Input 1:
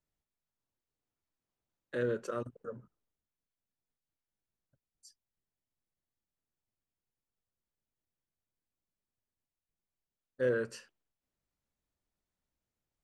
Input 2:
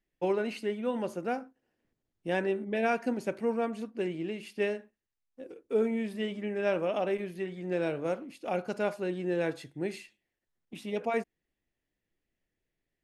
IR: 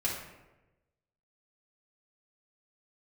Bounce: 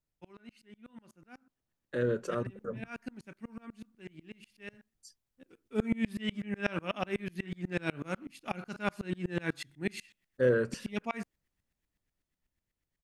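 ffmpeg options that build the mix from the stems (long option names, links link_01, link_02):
-filter_complex "[0:a]volume=-3dB[link_01];[1:a]firequalizer=gain_entry='entry(210,0);entry(490,-11);entry(1200,4)':delay=0.05:min_phase=1,aeval=exprs='val(0)*pow(10,-30*if(lt(mod(-8.1*n/s,1),2*abs(-8.1)/1000),1-mod(-8.1*n/s,1)/(2*abs(-8.1)/1000),(mod(-8.1*n/s,1)-2*abs(-8.1)/1000)/(1-2*abs(-8.1)/1000))/20)':channel_layout=same,afade=type=in:start_time=5.39:duration=0.42:silence=0.237137[link_02];[link_01][link_02]amix=inputs=2:normalize=0,lowshelf=frequency=260:gain=5.5,dynaudnorm=framelen=240:gausssize=17:maxgain=6.5dB"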